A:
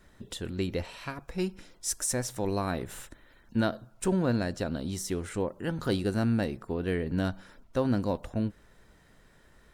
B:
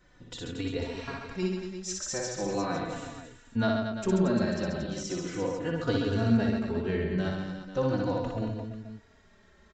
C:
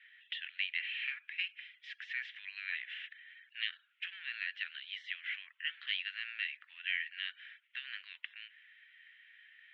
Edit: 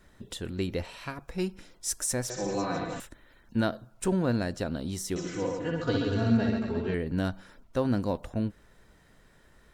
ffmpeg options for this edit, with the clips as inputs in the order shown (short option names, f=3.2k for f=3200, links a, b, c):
-filter_complex "[1:a]asplit=2[a][b];[0:a]asplit=3[c][d][e];[c]atrim=end=2.302[f];[a]atrim=start=2.298:end=3.002[g];[d]atrim=start=2.998:end=5.162[h];[b]atrim=start=5.158:end=6.942[i];[e]atrim=start=6.938[j];[f][g]acrossfade=d=0.004:c1=hsin:c2=hsin[k];[k][h]acrossfade=d=0.004:c1=hsin:c2=hsin[l];[l][i]acrossfade=d=0.004:c1=hsin:c2=hsin[m];[m][j]acrossfade=d=0.004:c1=hsin:c2=hsin"